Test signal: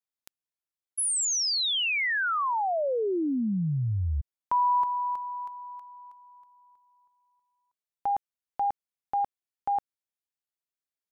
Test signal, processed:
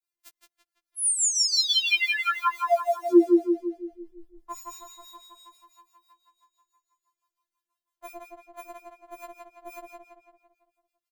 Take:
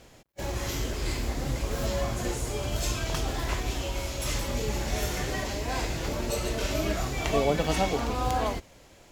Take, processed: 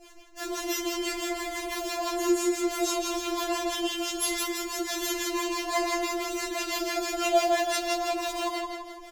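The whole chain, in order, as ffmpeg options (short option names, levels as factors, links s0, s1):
-filter_complex "[0:a]adynamicequalizer=threshold=0.00891:dfrequency=1600:dqfactor=1.2:tfrequency=1600:tqfactor=1.2:attack=5:release=100:ratio=0.3:range=1.5:mode=cutabove:tftype=bell,acrossover=split=360|5000[s0][s1][s2];[s1]acrusher=bits=6:mode=log:mix=0:aa=0.000001[s3];[s0][s3][s2]amix=inputs=3:normalize=0,acrossover=split=720[s4][s5];[s4]aeval=exprs='val(0)*(1-0.7/2+0.7/2*cos(2*PI*6*n/s))':c=same[s6];[s5]aeval=exprs='val(0)*(1-0.7/2-0.7/2*cos(2*PI*6*n/s))':c=same[s7];[s6][s7]amix=inputs=2:normalize=0,asplit=2[s8][s9];[s9]adelay=168,lowpass=f=4900:p=1,volume=0.708,asplit=2[s10][s11];[s11]adelay=168,lowpass=f=4900:p=1,volume=0.51,asplit=2[s12][s13];[s13]adelay=168,lowpass=f=4900:p=1,volume=0.51,asplit=2[s14][s15];[s15]adelay=168,lowpass=f=4900:p=1,volume=0.51,asplit=2[s16][s17];[s17]adelay=168,lowpass=f=4900:p=1,volume=0.51,asplit=2[s18][s19];[s19]adelay=168,lowpass=f=4900:p=1,volume=0.51,asplit=2[s20][s21];[s21]adelay=168,lowpass=f=4900:p=1,volume=0.51[s22];[s8][s10][s12][s14][s16][s18][s20][s22]amix=inputs=8:normalize=0,afftfilt=real='re*4*eq(mod(b,16),0)':imag='im*4*eq(mod(b,16),0)':win_size=2048:overlap=0.75,volume=2.51"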